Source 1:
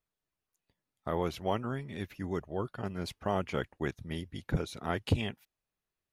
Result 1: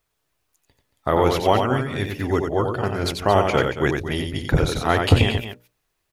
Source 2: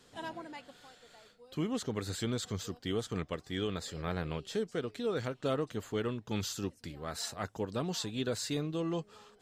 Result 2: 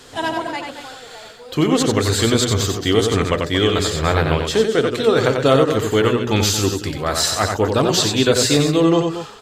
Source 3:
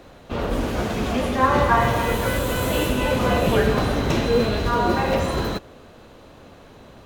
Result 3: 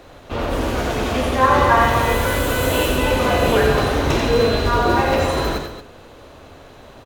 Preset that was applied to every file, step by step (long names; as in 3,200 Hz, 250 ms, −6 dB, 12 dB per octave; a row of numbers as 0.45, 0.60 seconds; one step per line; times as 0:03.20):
parametric band 190 Hz −8.5 dB 0.44 octaves
mains-hum notches 60/120/180/240/300/360/420/480/540/600 Hz
on a send: loudspeakers that aren't time-aligned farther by 31 metres −5 dB, 78 metres −11 dB
on the sum: normalise the peak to −2 dBFS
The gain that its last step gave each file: +14.5, +19.0, +3.0 decibels